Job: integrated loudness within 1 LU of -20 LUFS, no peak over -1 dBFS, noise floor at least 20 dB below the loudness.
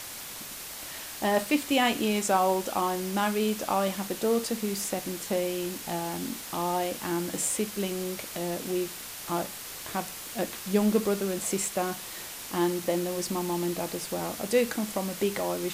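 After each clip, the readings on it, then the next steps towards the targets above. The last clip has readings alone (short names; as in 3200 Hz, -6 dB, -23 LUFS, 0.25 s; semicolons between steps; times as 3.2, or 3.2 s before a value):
noise floor -40 dBFS; noise floor target -50 dBFS; loudness -29.5 LUFS; peak -11.0 dBFS; loudness target -20.0 LUFS
-> denoiser 10 dB, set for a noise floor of -40 dBFS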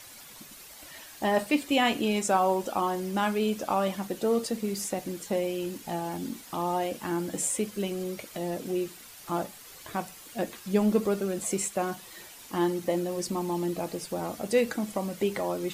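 noise floor -48 dBFS; noise floor target -50 dBFS
-> denoiser 6 dB, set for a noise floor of -48 dBFS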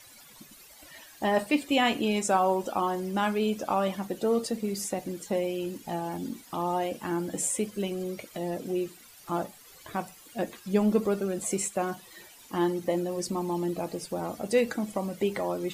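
noise floor -52 dBFS; loudness -29.5 LUFS; peak -11.0 dBFS; loudness target -20.0 LUFS
-> gain +9.5 dB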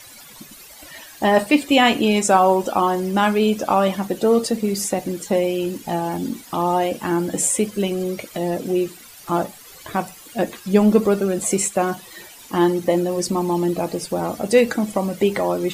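loudness -20.0 LUFS; peak -1.5 dBFS; noise floor -43 dBFS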